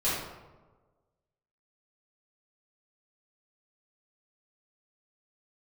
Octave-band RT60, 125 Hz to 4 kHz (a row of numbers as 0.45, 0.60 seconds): 1.5, 1.3, 1.4, 1.2, 0.85, 0.60 seconds